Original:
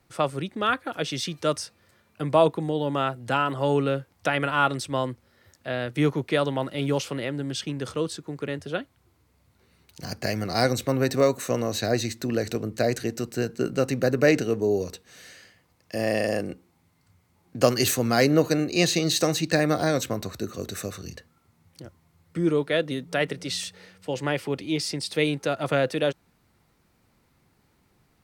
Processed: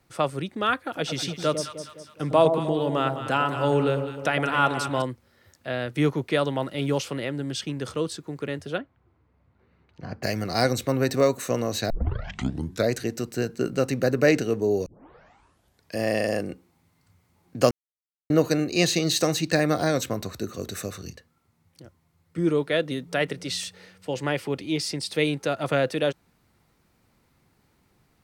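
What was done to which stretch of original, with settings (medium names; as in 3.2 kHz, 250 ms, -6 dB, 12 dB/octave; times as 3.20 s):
0.83–5.02 s: echo whose repeats swap between lows and highs 103 ms, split 880 Hz, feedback 67%, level -6 dB
8.78–10.23 s: low-pass 1.8 kHz
11.90 s: tape start 0.99 s
14.86 s: tape start 1.11 s
17.71–18.30 s: mute
21.11–22.38 s: gain -4.5 dB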